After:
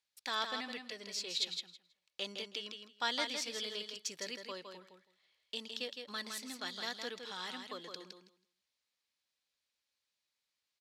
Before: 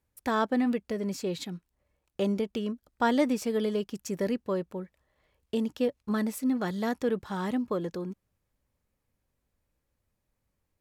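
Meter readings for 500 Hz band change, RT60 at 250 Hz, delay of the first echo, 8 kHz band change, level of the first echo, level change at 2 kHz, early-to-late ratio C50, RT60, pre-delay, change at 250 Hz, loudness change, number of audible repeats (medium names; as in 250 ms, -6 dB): -16.0 dB, no reverb, 162 ms, 0.0 dB, -6.0 dB, -3.5 dB, no reverb, no reverb, no reverb, -22.5 dB, -9.5 dB, 2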